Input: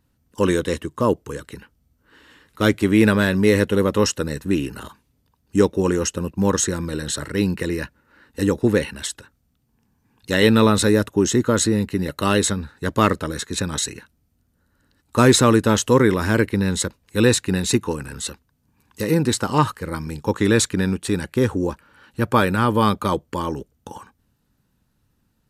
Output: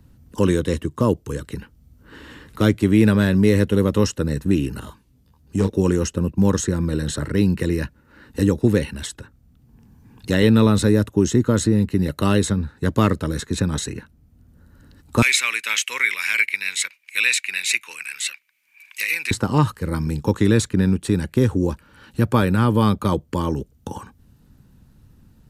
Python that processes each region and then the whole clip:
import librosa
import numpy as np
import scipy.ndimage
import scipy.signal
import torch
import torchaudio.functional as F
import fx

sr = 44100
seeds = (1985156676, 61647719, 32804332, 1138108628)

y = fx.chain(x, sr, fx.overload_stage(gain_db=8.0),
    fx.detune_double(cents=19), at=(4.8, 5.7))
y = fx.chain(y, sr, fx.highpass_res(hz=2300.0, q=13.0),
    fx.high_shelf(hz=3500.0, db=8.5), at=(15.22, 19.31))
y = fx.low_shelf(y, sr, hz=330.0, db=11.0)
y = fx.band_squash(y, sr, depth_pct=40)
y = y * 10.0 ** (-5.0 / 20.0)